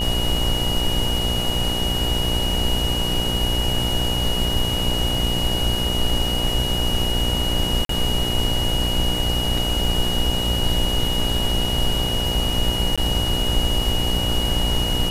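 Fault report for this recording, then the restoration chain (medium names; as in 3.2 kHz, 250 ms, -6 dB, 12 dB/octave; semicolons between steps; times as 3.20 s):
buzz 60 Hz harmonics 16 -26 dBFS
crackle 29 per s -29 dBFS
whine 2.9 kHz -24 dBFS
7.85–7.89 s: dropout 43 ms
12.96–12.98 s: dropout 16 ms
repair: de-click; de-hum 60 Hz, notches 16; band-stop 2.9 kHz, Q 30; interpolate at 7.85 s, 43 ms; interpolate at 12.96 s, 16 ms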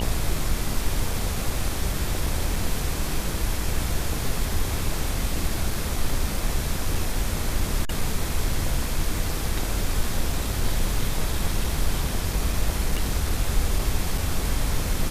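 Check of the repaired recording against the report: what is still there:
nothing left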